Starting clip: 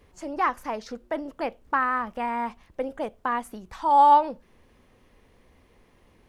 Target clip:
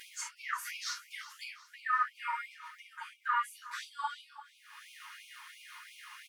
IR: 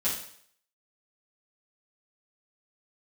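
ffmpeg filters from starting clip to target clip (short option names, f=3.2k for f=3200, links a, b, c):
-filter_complex "[0:a]asettb=1/sr,asplit=3[a][b][c];[a]atrim=end=0.544[d];[b]atrim=start=0.54:end=1.43,asetpts=PTS-STARTPTS,afade=t=in:d=0.004:c=qsin,afade=t=out:st=0.886:d=0.004:c=qsin,highshelf=f=2.2k:g=11[e];[c]atrim=start=1.426[f];[d][e]acrossfade=d=0.004:c1=hsin:c2=qsin[g];[g][f]acrossfade=d=0.004:c1=qsin:c2=hsin,acompressor=mode=upward:threshold=-28dB:ratio=2.5[h];[1:a]atrim=start_sample=2205,atrim=end_sample=3528,asetrate=41454,aresample=44100[i];[h][i]afir=irnorm=-1:irlink=0,acompressor=threshold=-30dB:ratio=1.5,equalizer=f=1.4k:t=o:w=0.27:g=8,aecho=1:1:365|730|1095|1460:0.141|0.0664|0.0312|0.0147,afftfilt=real='re*gte(b*sr/1024,860*pow(2200/860,0.5+0.5*sin(2*PI*2.9*pts/sr)))':imag='im*gte(b*sr/1024,860*pow(2200/860,0.5+0.5*sin(2*PI*2.9*pts/sr)))':win_size=1024:overlap=0.75,volume=-6.5dB"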